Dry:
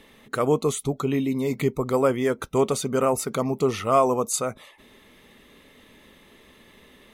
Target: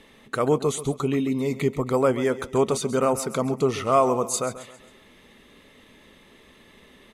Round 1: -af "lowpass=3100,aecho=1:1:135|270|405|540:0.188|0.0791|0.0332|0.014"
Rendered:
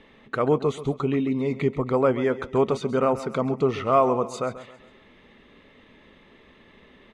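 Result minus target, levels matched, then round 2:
8,000 Hz band −15.5 dB
-af "lowpass=11000,aecho=1:1:135|270|405|540:0.188|0.0791|0.0332|0.014"

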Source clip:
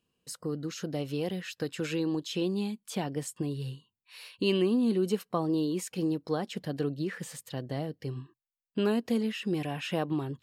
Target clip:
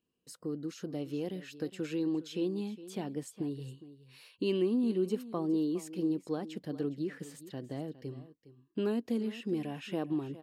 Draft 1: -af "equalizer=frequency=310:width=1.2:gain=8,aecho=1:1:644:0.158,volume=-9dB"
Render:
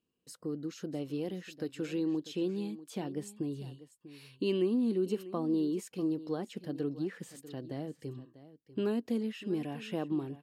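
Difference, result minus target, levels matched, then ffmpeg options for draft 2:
echo 233 ms late
-af "equalizer=frequency=310:width=1.2:gain=8,aecho=1:1:411:0.158,volume=-9dB"

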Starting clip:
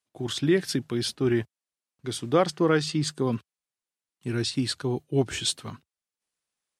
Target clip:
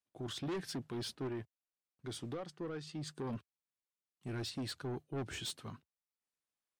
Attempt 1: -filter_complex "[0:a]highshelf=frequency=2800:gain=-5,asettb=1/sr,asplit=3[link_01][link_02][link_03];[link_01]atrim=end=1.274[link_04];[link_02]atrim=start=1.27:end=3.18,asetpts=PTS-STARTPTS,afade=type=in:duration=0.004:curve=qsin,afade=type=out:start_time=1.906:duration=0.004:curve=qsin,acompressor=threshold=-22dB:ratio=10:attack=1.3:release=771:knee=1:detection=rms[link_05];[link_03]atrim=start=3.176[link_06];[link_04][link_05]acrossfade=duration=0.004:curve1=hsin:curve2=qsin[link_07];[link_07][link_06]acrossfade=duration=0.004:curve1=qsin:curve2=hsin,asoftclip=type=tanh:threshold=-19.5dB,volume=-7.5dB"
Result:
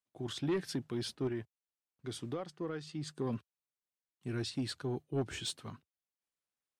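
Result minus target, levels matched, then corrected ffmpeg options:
soft clipping: distortion −8 dB
-filter_complex "[0:a]highshelf=frequency=2800:gain=-5,asettb=1/sr,asplit=3[link_01][link_02][link_03];[link_01]atrim=end=1.274[link_04];[link_02]atrim=start=1.27:end=3.18,asetpts=PTS-STARTPTS,afade=type=in:duration=0.004:curve=qsin,afade=type=out:start_time=1.906:duration=0.004:curve=qsin,acompressor=threshold=-22dB:ratio=10:attack=1.3:release=771:knee=1:detection=rms[link_05];[link_03]atrim=start=3.176[link_06];[link_04][link_05]acrossfade=duration=0.004:curve1=hsin:curve2=qsin[link_07];[link_07][link_06]acrossfade=duration=0.004:curve1=qsin:curve2=hsin,asoftclip=type=tanh:threshold=-28dB,volume=-7.5dB"

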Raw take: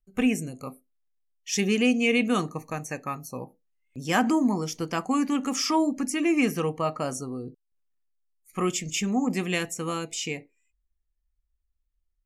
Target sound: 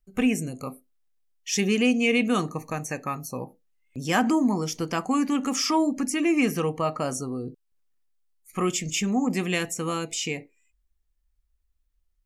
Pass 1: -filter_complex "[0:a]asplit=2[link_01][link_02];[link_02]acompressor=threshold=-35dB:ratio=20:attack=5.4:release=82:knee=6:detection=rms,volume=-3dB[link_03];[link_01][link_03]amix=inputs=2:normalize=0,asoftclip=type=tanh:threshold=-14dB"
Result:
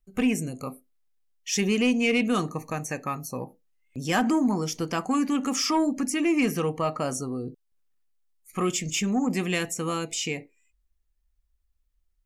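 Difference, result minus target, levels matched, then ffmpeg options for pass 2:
soft clipping: distortion +16 dB
-filter_complex "[0:a]asplit=2[link_01][link_02];[link_02]acompressor=threshold=-35dB:ratio=20:attack=5.4:release=82:knee=6:detection=rms,volume=-3dB[link_03];[link_01][link_03]amix=inputs=2:normalize=0,asoftclip=type=tanh:threshold=-5dB"

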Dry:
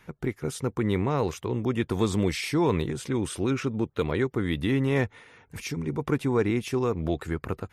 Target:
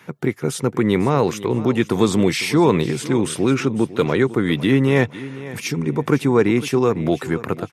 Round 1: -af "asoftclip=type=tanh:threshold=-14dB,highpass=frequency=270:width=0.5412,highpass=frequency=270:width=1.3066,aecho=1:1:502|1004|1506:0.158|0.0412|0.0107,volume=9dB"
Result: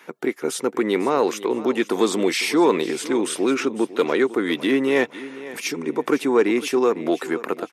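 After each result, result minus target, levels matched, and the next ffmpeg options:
125 Hz band −17.0 dB; soft clipping: distortion +12 dB
-af "asoftclip=type=tanh:threshold=-14dB,highpass=frequency=120:width=0.5412,highpass=frequency=120:width=1.3066,aecho=1:1:502|1004|1506:0.158|0.0412|0.0107,volume=9dB"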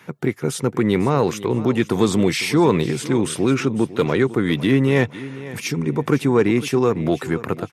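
soft clipping: distortion +12 dB
-af "asoftclip=type=tanh:threshold=-7.5dB,highpass=frequency=120:width=0.5412,highpass=frequency=120:width=1.3066,aecho=1:1:502|1004|1506:0.158|0.0412|0.0107,volume=9dB"

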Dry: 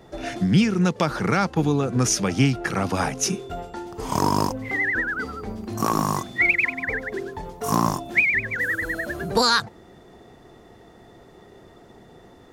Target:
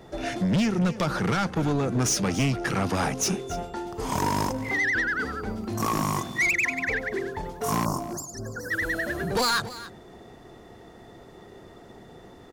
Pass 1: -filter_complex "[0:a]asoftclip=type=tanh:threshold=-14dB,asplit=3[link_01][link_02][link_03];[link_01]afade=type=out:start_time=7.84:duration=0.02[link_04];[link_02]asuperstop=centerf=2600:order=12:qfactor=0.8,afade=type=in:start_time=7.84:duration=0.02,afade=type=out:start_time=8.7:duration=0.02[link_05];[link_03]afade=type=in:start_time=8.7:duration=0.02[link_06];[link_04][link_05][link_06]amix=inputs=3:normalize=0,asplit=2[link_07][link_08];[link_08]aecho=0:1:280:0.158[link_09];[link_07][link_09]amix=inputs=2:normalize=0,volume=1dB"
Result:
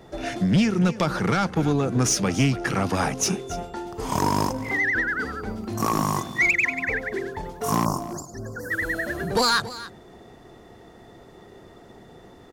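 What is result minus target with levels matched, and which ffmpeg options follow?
soft clipping: distortion −7 dB
-filter_complex "[0:a]asoftclip=type=tanh:threshold=-20.5dB,asplit=3[link_01][link_02][link_03];[link_01]afade=type=out:start_time=7.84:duration=0.02[link_04];[link_02]asuperstop=centerf=2600:order=12:qfactor=0.8,afade=type=in:start_time=7.84:duration=0.02,afade=type=out:start_time=8.7:duration=0.02[link_05];[link_03]afade=type=in:start_time=8.7:duration=0.02[link_06];[link_04][link_05][link_06]amix=inputs=3:normalize=0,asplit=2[link_07][link_08];[link_08]aecho=0:1:280:0.158[link_09];[link_07][link_09]amix=inputs=2:normalize=0,volume=1dB"

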